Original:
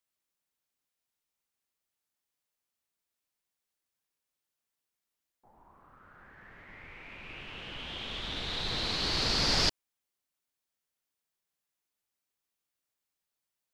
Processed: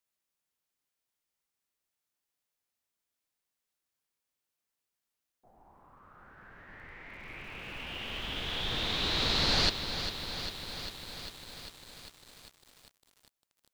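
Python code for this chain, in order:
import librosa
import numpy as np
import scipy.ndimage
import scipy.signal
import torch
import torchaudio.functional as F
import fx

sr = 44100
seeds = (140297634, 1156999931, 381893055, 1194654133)

y = fx.echo_bbd(x, sr, ms=345, stages=4096, feedback_pct=49, wet_db=-21)
y = fx.formant_shift(y, sr, semitones=-2)
y = fx.echo_crushed(y, sr, ms=399, feedback_pct=80, bits=8, wet_db=-9.0)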